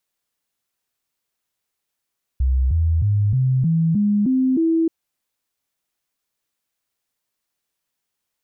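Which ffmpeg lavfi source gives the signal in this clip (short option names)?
-f lavfi -i "aevalsrc='0.188*clip(min(mod(t,0.31),0.31-mod(t,0.31))/0.005,0,1)*sin(2*PI*64.9*pow(2,floor(t/0.31)/3)*mod(t,0.31))':d=2.48:s=44100"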